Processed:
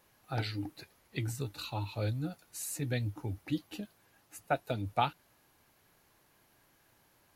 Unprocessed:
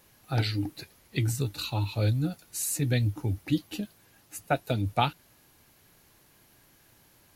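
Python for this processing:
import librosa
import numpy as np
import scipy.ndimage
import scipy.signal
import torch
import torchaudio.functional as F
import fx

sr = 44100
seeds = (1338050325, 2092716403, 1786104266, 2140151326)

y = fx.peak_eq(x, sr, hz=950.0, db=6.0, octaves=2.6)
y = F.gain(torch.from_numpy(y), -9.0).numpy()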